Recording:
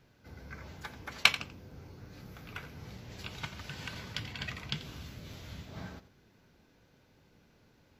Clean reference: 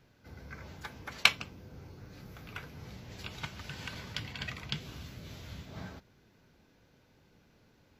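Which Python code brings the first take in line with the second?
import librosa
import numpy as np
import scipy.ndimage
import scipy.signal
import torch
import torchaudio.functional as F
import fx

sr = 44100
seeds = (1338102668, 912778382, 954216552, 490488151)

y = fx.fix_interpolate(x, sr, at_s=(1.06, 1.71, 2.98, 5.33), length_ms=3.0)
y = fx.fix_echo_inverse(y, sr, delay_ms=87, level_db=-14.5)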